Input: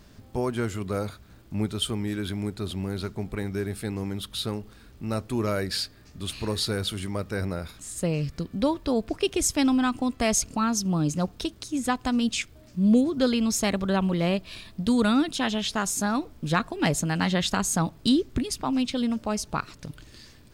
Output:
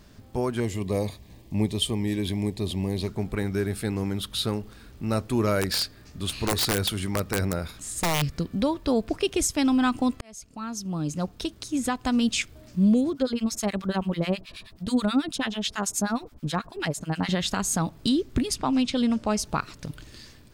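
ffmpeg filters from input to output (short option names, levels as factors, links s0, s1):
-filter_complex "[0:a]asettb=1/sr,asplit=3[s0][s1][s2];[s0]atrim=end=0.604[s3];[s1]atrim=start=0.6:end=3.08,asetpts=PTS-STARTPTS,afade=t=in:d=0.004:c=qsin,afade=t=out:st=2.476:d=0.004:c=qsin,asuperstop=centerf=1400:order=4:qfactor=2.2[s4];[s2]atrim=start=3.076[s5];[s3][s4]acrossfade=d=0.004:c1=hsin:c2=qsin[s6];[s6][s5]acrossfade=d=0.004:c1=qsin:c2=hsin,asettb=1/sr,asplit=3[s7][s8][s9];[s7]atrim=end=5.614[s10];[s8]atrim=start=5.61:end=8.22,asetpts=PTS-STARTPTS,afade=t=in:d=0.004:c=qsin,afade=t=out:st=2.606:d=0.004:c=qsin,aeval=exprs='(mod(10*val(0)+1,2)-1)/10':c=same[s11];[s9]atrim=start=8.216[s12];[s10][s11]acrossfade=d=0.004:c1=hsin:c2=qsin[s13];[s13][s12]acrossfade=d=0.004:c1=qsin:c2=hsin,asettb=1/sr,asplit=3[s14][s15][s16];[s14]atrim=end=13.134[s17];[s15]atrim=start=13.13:end=17.29,asetpts=PTS-STARTPTS,afade=t=in:d=0.004:c=qsin,afade=t=out:st=4.156:d=0.004:c=qsin,acrossover=split=1100[s18][s19];[s18]aeval=exprs='val(0)*(1-1/2+1/2*cos(2*PI*9.3*n/s))':c=same[s20];[s19]aeval=exprs='val(0)*(1-1/2-1/2*cos(2*PI*9.3*n/s))':c=same[s21];[s20][s21]amix=inputs=2:normalize=0[s22];[s16]atrim=start=17.286[s23];[s17][s22]acrossfade=d=0.004:c1=hsin:c2=qsin[s24];[s24][s23]acrossfade=d=0.004:c1=qsin:c2=hsin,asettb=1/sr,asplit=3[s25][s26][s27];[s25]atrim=end=18.544[s28];[s26]atrim=start=18.54:end=19.39,asetpts=PTS-STARTPTS,afade=t=in:d=0.004:c=qsin,afade=t=out:st=0.846:d=0.004:c=qsin,lowpass=9800[s29];[s27]atrim=start=19.386[s30];[s28][s29]acrossfade=d=0.004:c1=hsin:c2=qsin[s31];[s31][s30]acrossfade=d=0.004:c1=qsin:c2=hsin,asplit=2[s32][s33];[s32]atrim=end=10.21,asetpts=PTS-STARTPTS,afade=t=out:st=10.206:d=0.004:c=hsin[s34];[s33]atrim=start=10.21,asetpts=PTS-STARTPTS,afade=t=in:d=1.86[s35];[s34][s35]concat=n=2:v=0:a=1,alimiter=limit=0.15:level=0:latency=1:release=310,dynaudnorm=f=250:g=5:m=1.41"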